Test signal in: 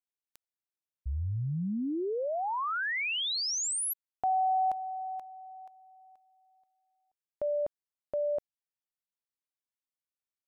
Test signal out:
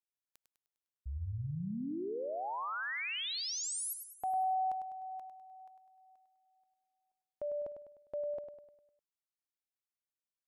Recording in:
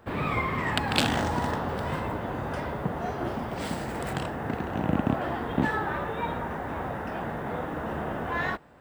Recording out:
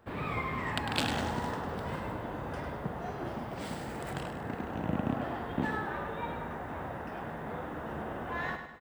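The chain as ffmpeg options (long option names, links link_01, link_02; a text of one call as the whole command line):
ffmpeg -i in.wav -af "aecho=1:1:101|202|303|404|505|606:0.398|0.191|0.0917|0.044|0.0211|0.0101,volume=-7dB" out.wav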